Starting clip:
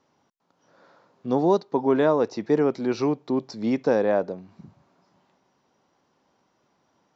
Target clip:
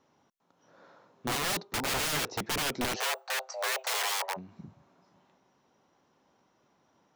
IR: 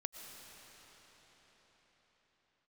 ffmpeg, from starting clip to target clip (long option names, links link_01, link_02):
-filter_complex "[0:a]bandreject=frequency=4700:width=11,aeval=exprs='(mod(16.8*val(0)+1,2)-1)/16.8':channel_layout=same,asplit=3[link_01][link_02][link_03];[link_01]afade=type=out:start_time=2.95:duration=0.02[link_04];[link_02]afreqshift=390,afade=type=in:start_time=2.95:duration=0.02,afade=type=out:start_time=4.36:duration=0.02[link_05];[link_03]afade=type=in:start_time=4.36:duration=0.02[link_06];[link_04][link_05][link_06]amix=inputs=3:normalize=0,volume=-1dB"